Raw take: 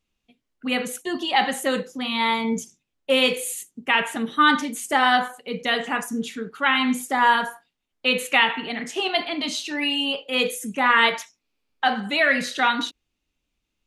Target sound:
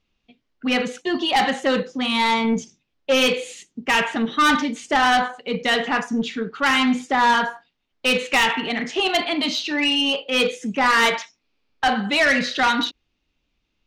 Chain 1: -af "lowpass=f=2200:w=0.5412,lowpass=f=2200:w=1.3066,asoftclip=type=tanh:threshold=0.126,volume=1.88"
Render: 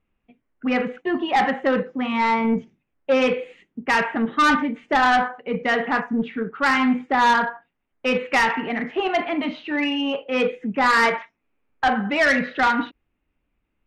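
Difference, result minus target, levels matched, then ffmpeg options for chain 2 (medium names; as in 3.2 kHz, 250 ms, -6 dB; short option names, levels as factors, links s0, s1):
4 kHz band -8.0 dB
-af "lowpass=f=5500:w=0.5412,lowpass=f=5500:w=1.3066,asoftclip=type=tanh:threshold=0.126,volume=1.88"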